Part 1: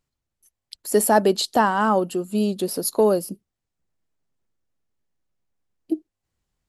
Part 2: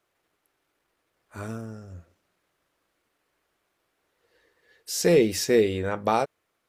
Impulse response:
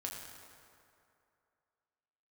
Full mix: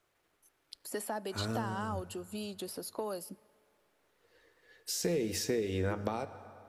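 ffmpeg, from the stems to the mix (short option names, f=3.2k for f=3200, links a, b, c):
-filter_complex "[0:a]acrossover=split=790|3500[a][b][c];[a]acompressor=threshold=-33dB:ratio=4[d];[b]acompressor=threshold=-31dB:ratio=4[e];[c]acompressor=threshold=-37dB:ratio=4[f];[d][e][f]amix=inputs=3:normalize=0,volume=-8.5dB,asplit=2[g][h];[h]volume=-20dB[i];[1:a]acompressor=threshold=-27dB:ratio=5,volume=-2.5dB,asplit=2[j][k];[k]volume=-9.5dB[l];[2:a]atrim=start_sample=2205[m];[i][l]amix=inputs=2:normalize=0[n];[n][m]afir=irnorm=-1:irlink=0[o];[g][j][o]amix=inputs=3:normalize=0,acrossover=split=360[p][q];[q]acompressor=threshold=-33dB:ratio=6[r];[p][r]amix=inputs=2:normalize=0"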